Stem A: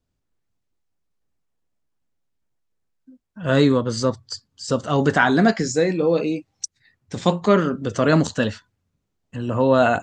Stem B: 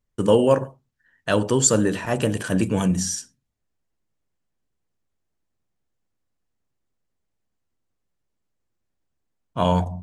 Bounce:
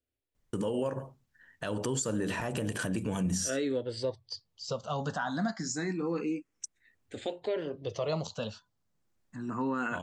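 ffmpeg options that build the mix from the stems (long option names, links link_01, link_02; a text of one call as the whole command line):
ffmpeg -i stem1.wav -i stem2.wav -filter_complex "[0:a]lowshelf=frequency=130:gain=-9,asplit=2[link_01][link_02];[link_02]afreqshift=0.28[link_03];[link_01][link_03]amix=inputs=2:normalize=1,volume=-6.5dB,asplit=2[link_04][link_05];[1:a]acompressor=threshold=-22dB:ratio=6,adelay=350,volume=2.5dB[link_06];[link_05]apad=whole_len=457688[link_07];[link_06][link_07]sidechaincompress=threshold=-37dB:ratio=8:attack=25:release=925[link_08];[link_04][link_08]amix=inputs=2:normalize=0,alimiter=limit=-22.5dB:level=0:latency=1:release=237" out.wav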